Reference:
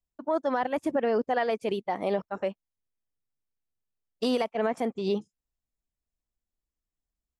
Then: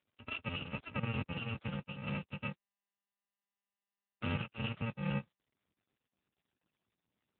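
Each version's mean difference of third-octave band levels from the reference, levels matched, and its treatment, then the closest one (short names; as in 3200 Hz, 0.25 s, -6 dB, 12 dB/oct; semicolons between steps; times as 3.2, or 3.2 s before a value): 12.0 dB: FFT order left unsorted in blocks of 128 samples; gain +3 dB; AMR-NB 6.7 kbps 8000 Hz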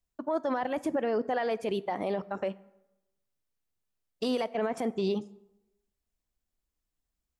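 2.5 dB: limiter -25 dBFS, peak gain reduction 9 dB; plate-style reverb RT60 0.93 s, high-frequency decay 0.6×, DRR 17.5 dB; gain +3.5 dB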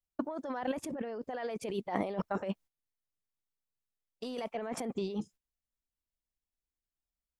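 5.5 dB: gate -51 dBFS, range -15 dB; negative-ratio compressor -36 dBFS, ratio -1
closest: second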